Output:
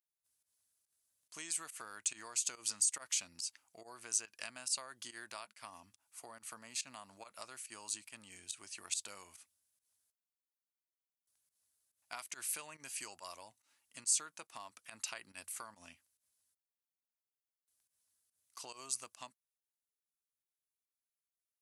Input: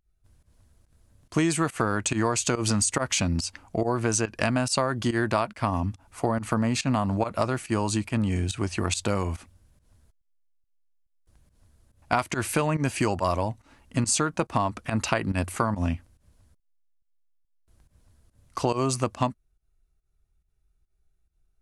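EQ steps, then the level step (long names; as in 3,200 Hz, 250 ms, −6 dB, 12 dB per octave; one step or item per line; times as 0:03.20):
first difference
−6.5 dB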